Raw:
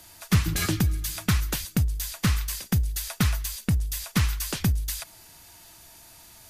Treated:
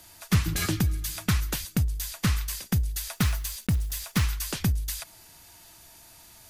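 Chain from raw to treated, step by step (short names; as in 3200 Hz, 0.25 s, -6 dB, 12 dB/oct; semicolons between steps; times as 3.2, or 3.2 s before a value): 3.11–4.25 block floating point 5-bit; gain -1.5 dB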